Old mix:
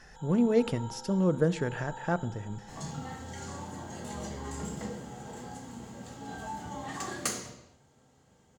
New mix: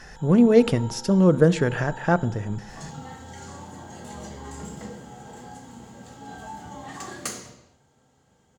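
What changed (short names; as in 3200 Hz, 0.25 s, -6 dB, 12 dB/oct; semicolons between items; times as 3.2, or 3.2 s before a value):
speech +9.0 dB; first sound +3.0 dB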